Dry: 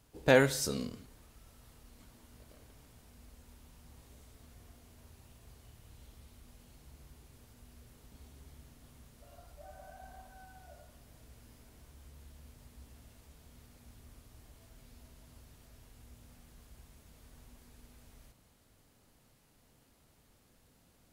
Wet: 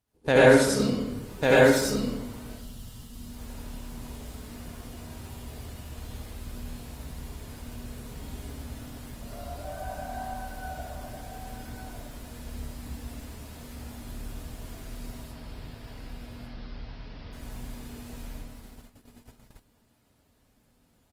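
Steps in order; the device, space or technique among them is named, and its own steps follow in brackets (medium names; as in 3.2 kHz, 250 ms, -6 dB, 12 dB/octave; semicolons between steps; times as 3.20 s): 2.48–3.29 s: spectral selection erased 260–2700 Hz; 15.23–17.33 s: elliptic low-pass 5.1 kHz, stop band 40 dB; delay 1147 ms -8.5 dB; speakerphone in a meeting room (reverberation RT60 0.85 s, pre-delay 70 ms, DRR -6.5 dB; speakerphone echo 180 ms, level -22 dB; level rider gain up to 8.5 dB; gate -44 dBFS, range -16 dB; Opus 24 kbps 48 kHz)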